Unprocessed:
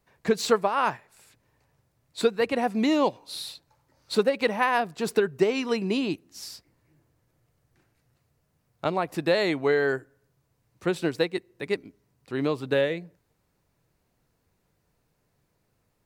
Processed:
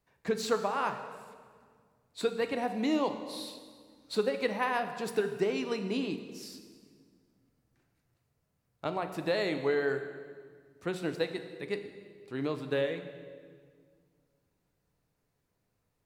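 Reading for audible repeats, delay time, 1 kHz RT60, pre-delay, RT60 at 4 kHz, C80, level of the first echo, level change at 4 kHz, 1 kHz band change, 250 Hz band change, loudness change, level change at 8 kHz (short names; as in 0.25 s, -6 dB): none, none, 1.7 s, 4 ms, 1.5 s, 10.5 dB, none, -7.0 dB, -6.5 dB, -6.5 dB, -6.5 dB, -7.0 dB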